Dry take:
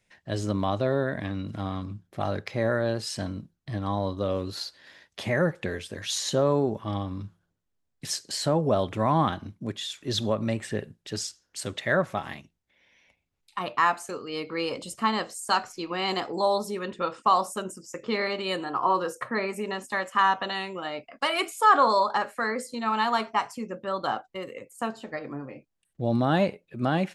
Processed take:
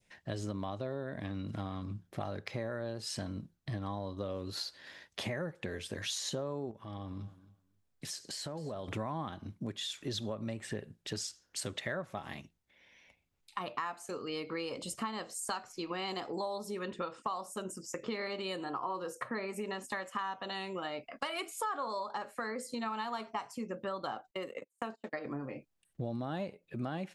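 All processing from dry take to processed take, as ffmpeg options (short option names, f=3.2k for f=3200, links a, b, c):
-filter_complex "[0:a]asettb=1/sr,asplit=3[a][b][c];[a]atrim=end=6.714[d];[b]atrim=start=6.71:end=8.88,asetpts=PTS-STARTPTS,afade=t=in:d=0.004:c=qsin,afade=t=out:st=2.166:d=0.004:c=qsin,acompressor=threshold=-41dB:ratio=3:attack=3.2:release=140:knee=1:detection=peak,aecho=1:1:267|534:0.119|0.0178,atrim=end_sample=95697[e];[c]atrim=start=8.876[f];[d][e]acrossfade=d=0.004:c1=hsin:c2=qsin[g];[g][f]acrossfade=d=0.004:c1=qsin:c2=hsin,asettb=1/sr,asplit=3[h][i][j];[h]atrim=end=24.314[k];[i]atrim=start=24.31:end=25.26,asetpts=PTS-STARTPTS,afade=t=in:d=0.004:c=qsin,afade=t=out:st=0.946:d=0.004:c=qsin,agate=range=-32dB:threshold=-41dB:ratio=16:release=100:detection=peak,highpass=190[l];[j]atrim=start=25.256[m];[k][l]acrossfade=d=0.004:c1=hsin:c2=qsin[n];[n][m]acrossfade=d=0.004:c1=qsin:c2=hsin,adynamicequalizer=threshold=0.0126:dfrequency=1700:dqfactor=0.99:tfrequency=1700:tqfactor=0.99:attack=5:release=100:ratio=0.375:range=2.5:mode=cutabove:tftype=bell,acompressor=threshold=-35dB:ratio=6"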